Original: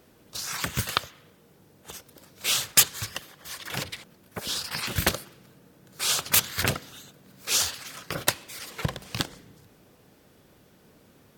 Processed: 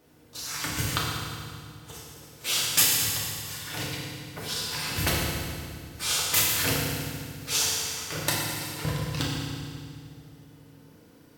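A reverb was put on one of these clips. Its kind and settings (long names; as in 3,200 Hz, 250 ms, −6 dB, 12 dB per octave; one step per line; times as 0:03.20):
feedback delay network reverb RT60 2.1 s, low-frequency decay 1.6×, high-frequency decay 0.95×, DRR −6 dB
level −6.5 dB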